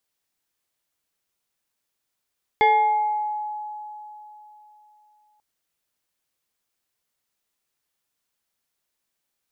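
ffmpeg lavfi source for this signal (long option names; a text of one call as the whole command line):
ffmpeg -f lavfi -i "aevalsrc='0.237*pow(10,-3*t/3.45)*sin(2*PI*845*t+0.97*pow(10,-3*t/1.28)*sin(2*PI*1.52*845*t))':duration=2.79:sample_rate=44100" out.wav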